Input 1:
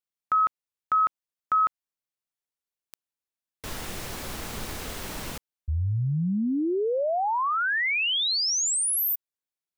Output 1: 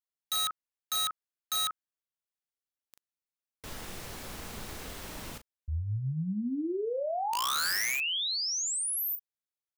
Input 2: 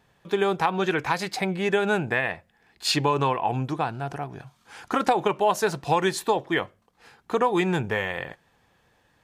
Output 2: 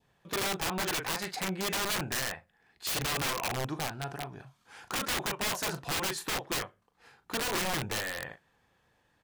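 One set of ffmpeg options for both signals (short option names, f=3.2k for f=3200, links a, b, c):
-filter_complex "[0:a]asplit=2[a][b];[b]adelay=38,volume=-10dB[c];[a][c]amix=inputs=2:normalize=0,adynamicequalizer=threshold=0.0178:dfrequency=1500:dqfactor=1.6:tfrequency=1500:tqfactor=1.6:attack=5:release=100:ratio=0.375:range=2:mode=boostabove:tftype=bell,aeval=exprs='(mod(8.91*val(0)+1,2)-1)/8.91':c=same,volume=-7dB"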